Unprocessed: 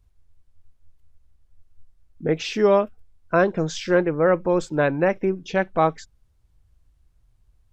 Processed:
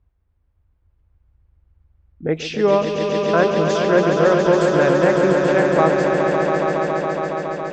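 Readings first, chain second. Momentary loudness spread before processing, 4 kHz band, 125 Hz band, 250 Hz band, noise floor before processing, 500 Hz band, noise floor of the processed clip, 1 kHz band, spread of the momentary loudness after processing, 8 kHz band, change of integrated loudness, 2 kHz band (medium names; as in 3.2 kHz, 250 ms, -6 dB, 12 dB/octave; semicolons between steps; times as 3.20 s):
7 LU, +5.5 dB, +5.5 dB, +5.5 dB, -62 dBFS, +6.0 dB, -66 dBFS, +6.0 dB, 8 LU, +4.5 dB, +4.5 dB, +5.5 dB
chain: high-pass 42 Hz; level-controlled noise filter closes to 1.9 kHz, open at -18 dBFS; on a send: echo with a slow build-up 139 ms, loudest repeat 5, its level -6.5 dB; on the sum: trim +1 dB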